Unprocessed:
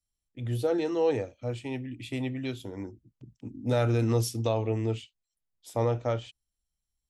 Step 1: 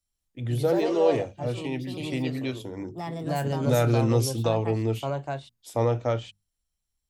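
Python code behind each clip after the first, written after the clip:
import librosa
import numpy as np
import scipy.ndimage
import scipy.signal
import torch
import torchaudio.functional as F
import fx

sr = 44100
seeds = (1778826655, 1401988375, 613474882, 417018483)

y = fx.hum_notches(x, sr, base_hz=50, count=4)
y = fx.echo_pitch(y, sr, ms=185, semitones=3, count=2, db_per_echo=-6.0)
y = F.gain(torch.from_numpy(y), 3.0).numpy()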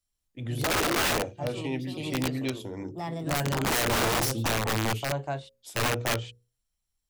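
y = fx.hum_notches(x, sr, base_hz=60, count=9)
y = (np.mod(10.0 ** (20.5 / 20.0) * y + 1.0, 2.0) - 1.0) / 10.0 ** (20.5 / 20.0)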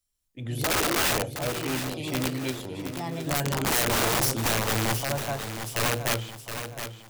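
y = fx.high_shelf(x, sr, hz=6100.0, db=5.5)
y = fx.echo_feedback(y, sr, ms=717, feedback_pct=40, wet_db=-9.0)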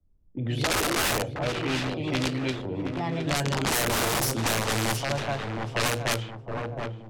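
y = fx.env_lowpass(x, sr, base_hz=320.0, full_db=-21.0)
y = fx.band_squash(y, sr, depth_pct=70)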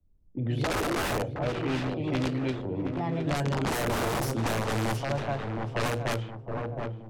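y = fx.high_shelf(x, sr, hz=2000.0, db=-11.0)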